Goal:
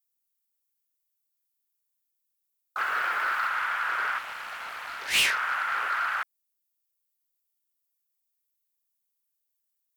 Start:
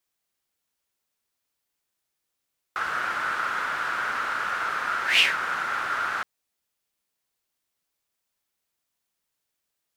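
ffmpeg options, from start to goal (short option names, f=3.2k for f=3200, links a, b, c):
-filter_complex "[0:a]asettb=1/sr,asplit=3[a][b][c];[a]atrim=end=2.784[d];[b]atrim=start=2.78:end=3.48,asetpts=PTS-STARTPTS,afade=t=in:d=0.004:c=qsin,afade=t=out:st=0.696:d=0.004:c=qsin,aeval=exprs='val(0)+0.5*0.00841*sgn(val(0))':c=same[e];[c]atrim=start=3.476[f];[d][e]acrossfade=d=0.004:c1=hsin:c2=qsin[g];[g][f]acrossfade=d=0.004:c1=qsin:c2=hsin,aemphasis=mode=production:type=75fm,afwtdn=0.0251,asoftclip=type=tanh:threshold=-19dB,asettb=1/sr,asplit=3[h][i][j];[h]atrim=end=4.184[k];[i]atrim=start=4.18:end=5.14,asetpts=PTS-STARTPTS,afade=t=in:d=0.004:c=qsin,afade=t=out:st=0.956:d=0.004:c=qsin,equalizer=f=1.4k:t=o:w=1.2:g=-11.5[l];[j]atrim=start=5.136[m];[k][l]acrossfade=d=0.004:c1=hsin:c2=qsin[n];[n][m]acrossfade=d=0.004:c1=qsin:c2=hsin"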